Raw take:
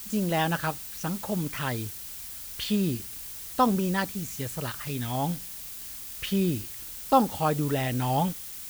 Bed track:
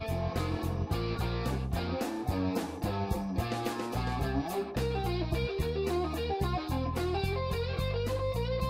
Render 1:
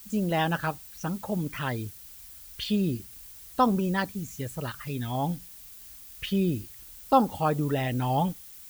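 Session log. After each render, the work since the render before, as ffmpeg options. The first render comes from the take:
ffmpeg -i in.wav -af "afftdn=noise_reduction=9:noise_floor=-40" out.wav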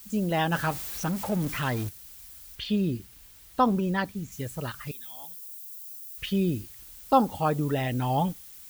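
ffmpeg -i in.wav -filter_complex "[0:a]asettb=1/sr,asplit=3[link_01][link_02][link_03];[link_01]atrim=end=0.524[link_04];[link_02]atrim=start=0.52:end=1.89,asetpts=PTS-STARTPTS,afade=type=in:duration=0.004:curve=qsin,afade=type=out:start_time=1.366:duration=0.004:curve=qsin,aeval=exprs='val(0)+0.5*0.0224*sgn(val(0))':channel_layout=same[link_05];[link_03]atrim=start=1.886[link_06];[link_04][link_05]acrossfade=duration=0.004:curve1=hsin:curve2=qsin[link_07];[link_07][link_06]acrossfade=duration=0.004:curve1=qsin:curve2=hsin,asettb=1/sr,asplit=3[link_08][link_09][link_10];[link_08]atrim=end=2.554[link_11];[link_09]atrim=start=2.55:end=4.32,asetpts=PTS-STARTPTS,afade=type=in:duration=0.004:curve=qsin,afade=type=out:start_time=1.766:duration=0.004:curve=qsin,acrossover=split=4400[link_12][link_13];[link_13]acompressor=threshold=-48dB:ratio=4:attack=1:release=60[link_14];[link_12][link_14]amix=inputs=2:normalize=0[link_15];[link_10]atrim=start=4.316[link_16];[link_11][link_15]acrossfade=duration=0.004:curve1=hsin:curve2=qsin[link_17];[link_17][link_16]acrossfade=duration=0.004:curve1=qsin:curve2=hsin,asettb=1/sr,asplit=3[link_18][link_19][link_20];[link_18]atrim=end=4.914[link_21];[link_19]atrim=start=4.91:end=6.18,asetpts=PTS-STARTPTS,afade=type=in:duration=0.004:curve=qsin,afade=type=out:start_time=1.266:duration=0.004:curve=qsin,aderivative[link_22];[link_20]atrim=start=6.176[link_23];[link_21][link_22]acrossfade=duration=0.004:curve1=hsin:curve2=qsin[link_24];[link_24][link_23]acrossfade=duration=0.004:curve1=qsin:curve2=hsin" out.wav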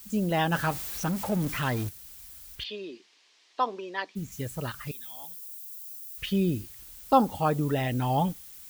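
ffmpeg -i in.wav -filter_complex "[0:a]asplit=3[link_01][link_02][link_03];[link_01]afade=type=out:start_time=2.63:duration=0.02[link_04];[link_02]highpass=frequency=400:width=0.5412,highpass=frequency=400:width=1.3066,equalizer=frequency=530:width_type=q:width=4:gain=-7,equalizer=frequency=800:width_type=q:width=4:gain=-4,equalizer=frequency=1400:width_type=q:width=4:gain=-8,lowpass=frequency=5500:width=0.5412,lowpass=frequency=5500:width=1.3066,afade=type=in:start_time=2.63:duration=0.02,afade=type=out:start_time=4.15:duration=0.02[link_05];[link_03]afade=type=in:start_time=4.15:duration=0.02[link_06];[link_04][link_05][link_06]amix=inputs=3:normalize=0" out.wav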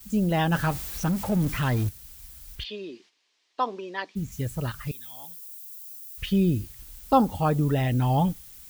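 ffmpeg -i in.wav -af "agate=range=-9dB:threshold=-57dB:ratio=16:detection=peak,lowshelf=frequency=140:gain=11.5" out.wav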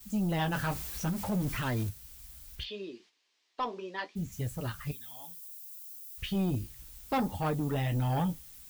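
ffmpeg -i in.wav -filter_complex "[0:a]flanger=delay=8.5:depth=9.2:regen=-45:speed=0.67:shape=triangular,acrossover=split=2600[link_01][link_02];[link_01]asoftclip=type=tanh:threshold=-25dB[link_03];[link_03][link_02]amix=inputs=2:normalize=0" out.wav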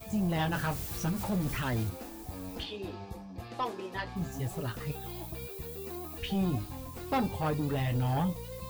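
ffmpeg -i in.wav -i bed.wav -filter_complex "[1:a]volume=-11dB[link_01];[0:a][link_01]amix=inputs=2:normalize=0" out.wav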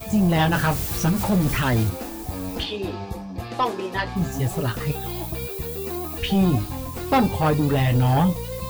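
ffmpeg -i in.wav -af "volume=11dB" out.wav

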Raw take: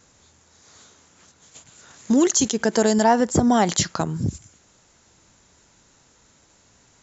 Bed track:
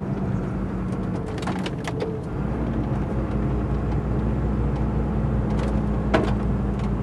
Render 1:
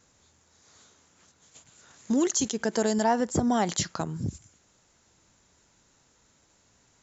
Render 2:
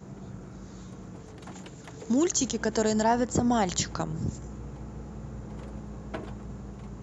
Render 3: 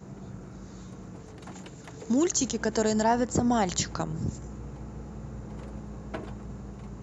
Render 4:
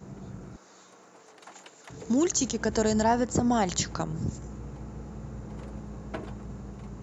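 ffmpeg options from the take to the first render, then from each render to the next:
ffmpeg -i in.wav -af "volume=-7dB" out.wav
ffmpeg -i in.wav -i bed.wav -filter_complex "[1:a]volume=-17dB[link_01];[0:a][link_01]amix=inputs=2:normalize=0" out.wav
ffmpeg -i in.wav -af "bandreject=frequency=3300:width=20" out.wav
ffmpeg -i in.wav -filter_complex "[0:a]asettb=1/sr,asplit=3[link_01][link_02][link_03];[link_01]atrim=end=0.564[link_04];[link_02]atrim=start=0.56:end=1.9,asetpts=PTS-STARTPTS,afade=type=in:duration=0.004:curve=qsin,afade=type=out:start_time=1.336:duration=0.004:curve=qsin,highpass=590[link_05];[link_03]atrim=start=1.896[link_06];[link_04][link_05]acrossfade=duration=0.004:curve1=hsin:curve2=qsin[link_07];[link_07][link_06]acrossfade=duration=0.004:curve1=qsin:curve2=hsin,asettb=1/sr,asplit=3[link_08][link_09][link_10];[link_08]atrim=end=2.654[link_11];[link_09]atrim=start=2.65:end=3.15,asetpts=PTS-STARTPTS,afade=type=in:duration=0.004:curve=qsin,afade=type=out:start_time=0.496:duration=0.004:curve=qsin,equalizer=frequency=79:width_type=o:width=0.77:gain=12.5[link_12];[link_10]atrim=start=3.146[link_13];[link_11][link_12]acrossfade=duration=0.004:curve1=hsin:curve2=qsin[link_14];[link_14][link_13]acrossfade=duration=0.004:curve1=qsin:curve2=hsin" out.wav

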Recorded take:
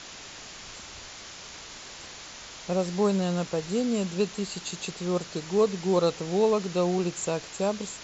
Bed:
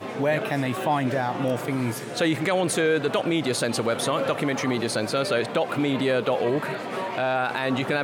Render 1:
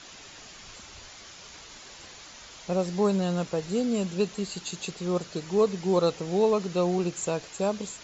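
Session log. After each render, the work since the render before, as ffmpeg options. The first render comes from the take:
ffmpeg -i in.wav -af "afftdn=noise_reduction=6:noise_floor=-44" out.wav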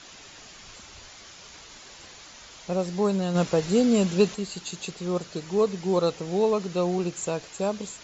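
ffmpeg -i in.wav -filter_complex "[0:a]asplit=3[link_01][link_02][link_03];[link_01]afade=type=out:start_time=3.34:duration=0.02[link_04];[link_02]acontrast=57,afade=type=in:start_time=3.34:duration=0.02,afade=type=out:start_time=4.34:duration=0.02[link_05];[link_03]afade=type=in:start_time=4.34:duration=0.02[link_06];[link_04][link_05][link_06]amix=inputs=3:normalize=0" out.wav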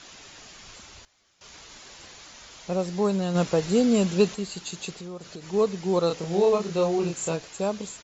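ffmpeg -i in.wav -filter_complex "[0:a]asplit=3[link_01][link_02][link_03];[link_01]afade=type=out:start_time=4.97:duration=0.02[link_04];[link_02]acompressor=threshold=-35dB:ratio=6:attack=3.2:release=140:knee=1:detection=peak,afade=type=in:start_time=4.97:duration=0.02,afade=type=out:start_time=5.52:duration=0.02[link_05];[link_03]afade=type=in:start_time=5.52:duration=0.02[link_06];[link_04][link_05][link_06]amix=inputs=3:normalize=0,asplit=3[link_07][link_08][link_09];[link_07]afade=type=out:start_time=6.09:duration=0.02[link_10];[link_08]asplit=2[link_11][link_12];[link_12]adelay=30,volume=-3dB[link_13];[link_11][link_13]amix=inputs=2:normalize=0,afade=type=in:start_time=6.09:duration=0.02,afade=type=out:start_time=7.35:duration=0.02[link_14];[link_09]afade=type=in:start_time=7.35:duration=0.02[link_15];[link_10][link_14][link_15]amix=inputs=3:normalize=0,asplit=3[link_16][link_17][link_18];[link_16]atrim=end=1.05,asetpts=PTS-STARTPTS,afade=type=out:start_time=0.69:duration=0.36:curve=log:silence=0.105925[link_19];[link_17]atrim=start=1.05:end=1.41,asetpts=PTS-STARTPTS,volume=-19.5dB[link_20];[link_18]atrim=start=1.41,asetpts=PTS-STARTPTS,afade=type=in:duration=0.36:curve=log:silence=0.105925[link_21];[link_19][link_20][link_21]concat=n=3:v=0:a=1" out.wav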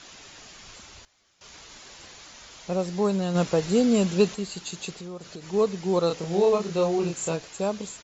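ffmpeg -i in.wav -af anull out.wav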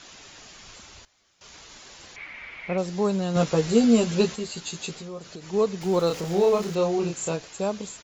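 ffmpeg -i in.wav -filter_complex "[0:a]asettb=1/sr,asplit=3[link_01][link_02][link_03];[link_01]atrim=end=2.164[link_04];[link_02]atrim=start=2.16:end=2.78,asetpts=PTS-STARTPTS,afade=type=in:duration=0.004:curve=qsin,afade=type=out:start_time=0.616:duration=0.004:curve=qsin,lowpass=frequency=2200:width_type=q:width=9.8[link_05];[link_03]atrim=start=2.776[link_06];[link_04][link_05]acrossfade=duration=0.004:curve1=hsin:curve2=qsin[link_07];[link_07][link_06]acrossfade=duration=0.004:curve1=qsin:curve2=hsin,asettb=1/sr,asplit=3[link_08][link_09][link_10];[link_08]atrim=end=3.354[link_11];[link_09]atrim=start=3.35:end=5.21,asetpts=PTS-STARTPTS,afade=type=in:duration=0.004:curve=qsin,afade=type=out:start_time=1.856:duration=0.004:curve=qsin,asplit=2[link_12][link_13];[link_13]adelay=13,volume=-3.5dB[link_14];[link_12][link_14]amix=inputs=2:normalize=0,atrim=end_sample=82026[link_15];[link_10]atrim=start=5.206[link_16];[link_11][link_15]acrossfade=duration=0.004:curve1=hsin:curve2=qsin[link_17];[link_17][link_16]acrossfade=duration=0.004:curve1=qsin:curve2=hsin,asettb=1/sr,asplit=3[link_18][link_19][link_20];[link_18]atrim=end=5.814[link_21];[link_19]atrim=start=5.81:end=6.75,asetpts=PTS-STARTPTS,afade=type=in:duration=0.004:curve=qsin,afade=type=out:start_time=0.936:duration=0.004:curve=qsin,aeval=exprs='val(0)+0.5*0.015*sgn(val(0))':channel_layout=same[link_22];[link_20]atrim=start=6.746[link_23];[link_21][link_22]acrossfade=duration=0.004:curve1=hsin:curve2=qsin[link_24];[link_24][link_23]acrossfade=duration=0.004:curve1=qsin:curve2=hsin" out.wav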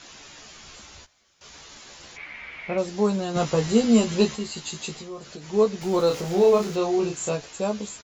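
ffmpeg -i in.wav -filter_complex "[0:a]asplit=2[link_01][link_02];[link_02]adelay=14,volume=-5dB[link_03];[link_01][link_03]amix=inputs=2:normalize=0" out.wav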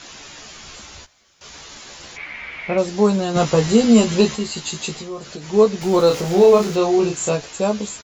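ffmpeg -i in.wav -af "volume=6.5dB,alimiter=limit=-3dB:level=0:latency=1" out.wav

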